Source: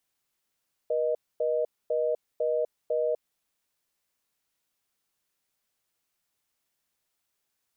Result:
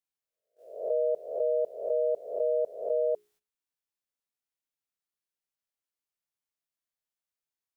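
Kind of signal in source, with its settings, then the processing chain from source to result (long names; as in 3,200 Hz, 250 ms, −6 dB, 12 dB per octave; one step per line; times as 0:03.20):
call progress tone reorder tone, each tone −26.5 dBFS 2.48 s
peak hold with a rise ahead of every peak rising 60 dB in 0.63 s
noise gate −58 dBFS, range −17 dB
mains-hum notches 60/120/180/240/300/360/420 Hz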